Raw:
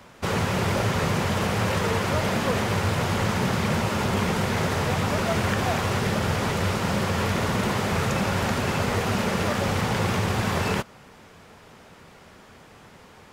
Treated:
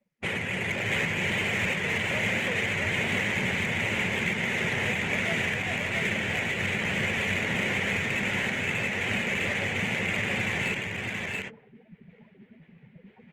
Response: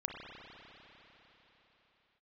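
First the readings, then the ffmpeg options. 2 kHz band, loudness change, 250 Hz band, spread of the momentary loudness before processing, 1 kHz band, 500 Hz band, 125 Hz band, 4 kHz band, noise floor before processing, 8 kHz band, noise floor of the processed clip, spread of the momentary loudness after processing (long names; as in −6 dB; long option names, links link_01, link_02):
+4.0 dB, −2.5 dB, −6.5 dB, 1 LU, −10.0 dB, −7.0 dB, −9.0 dB, −1.5 dB, −50 dBFS, −6.0 dB, −57 dBFS, 3 LU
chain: -filter_complex "[0:a]highpass=110,bandreject=frequency=149.8:width_type=h:width=4,bandreject=frequency=299.6:width_type=h:width=4,bandreject=frequency=449.4:width_type=h:width=4,afftdn=noise_reduction=34:noise_floor=-36,lowpass=frequency=3600:width=0.5412,lowpass=frequency=3600:width=1.3066,highshelf=frequency=1600:width_type=q:width=3:gain=9,areverse,acompressor=mode=upward:threshold=-30dB:ratio=2.5,areverse,alimiter=limit=-14dB:level=0:latency=1:release=477,adynamicsmooth=sensitivity=3.5:basefreq=1900,asplit=2[link_01][link_02];[link_02]aecho=0:1:677:0.708[link_03];[link_01][link_03]amix=inputs=2:normalize=0,volume=-4.5dB" -ar 48000 -c:a libopus -b:a 32k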